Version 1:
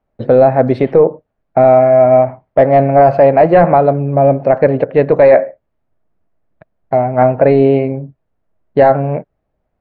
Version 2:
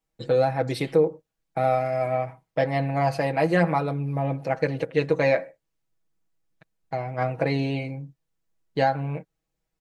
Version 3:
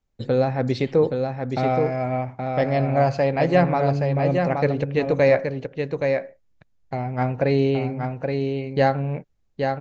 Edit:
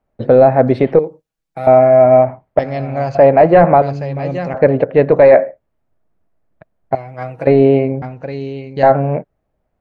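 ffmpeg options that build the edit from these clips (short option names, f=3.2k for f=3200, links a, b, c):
-filter_complex "[1:a]asplit=2[a][b];[2:a]asplit=3[c][d][e];[0:a]asplit=6[f][g][h][i][j][k];[f]atrim=end=0.992[l];[a]atrim=start=0.988:end=1.672[m];[g]atrim=start=1.668:end=2.592[n];[c]atrim=start=2.588:end=3.152[o];[h]atrim=start=3.148:end=3.822[p];[d]atrim=start=3.818:end=4.542[q];[i]atrim=start=4.538:end=6.952[r];[b]atrim=start=6.948:end=7.472[s];[j]atrim=start=7.468:end=8.022[t];[e]atrim=start=8.018:end=8.832[u];[k]atrim=start=8.828[v];[l][m]acrossfade=d=0.004:c1=hsin:c2=hsin[w];[w][n]acrossfade=d=0.004:c1=hsin:c2=hsin[x];[x][o]acrossfade=d=0.004:c1=hsin:c2=hsin[y];[y][p]acrossfade=d=0.004:c1=hsin:c2=hsin[z];[z][q]acrossfade=d=0.004:c1=hsin:c2=hsin[aa];[aa][r]acrossfade=d=0.004:c1=hsin:c2=hsin[ab];[ab][s]acrossfade=d=0.004:c1=hsin:c2=hsin[ac];[ac][t]acrossfade=d=0.004:c1=hsin:c2=hsin[ad];[ad][u]acrossfade=d=0.004:c1=hsin:c2=hsin[ae];[ae][v]acrossfade=d=0.004:c1=hsin:c2=hsin"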